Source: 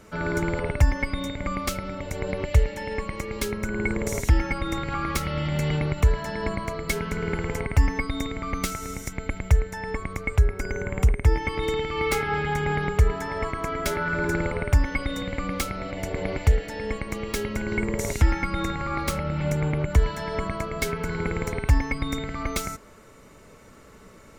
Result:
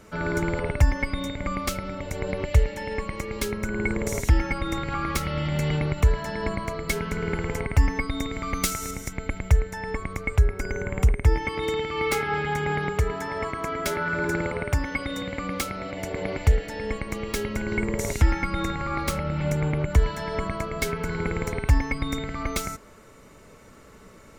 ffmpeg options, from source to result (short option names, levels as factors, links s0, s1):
-filter_complex "[0:a]asettb=1/sr,asplit=3[s0][s1][s2];[s0]atrim=end=8.324[s3];[s1]atrim=start=8.32:end=8.91,asetpts=PTS-STARTPTS,afade=t=in:d=0.004:c=qsin,afade=t=out:st=0.586:d=0.004:c=qsin,highshelf=f=3500:g=7.5[s4];[s2]atrim=start=8.906[s5];[s3][s4]acrossfade=d=0.004:c1=hsin:c2=qsin[s6];[s6][s5]acrossfade=d=0.004:c1=qsin:c2=hsin,asettb=1/sr,asplit=3[s7][s8][s9];[s7]atrim=end=11.454[s10];[s8]atrim=start=11.45:end=16.39,asetpts=PTS-STARTPTS,afade=t=in:d=0.004:c=qsin,afade=t=out:st=4.936:d=0.004:c=qsin,highpass=f=110:p=1[s11];[s9]atrim=start=16.386[s12];[s10][s11]acrossfade=d=0.004:c1=hsin:c2=qsin[s13];[s13][s12]acrossfade=d=0.004:c1=qsin:c2=hsin"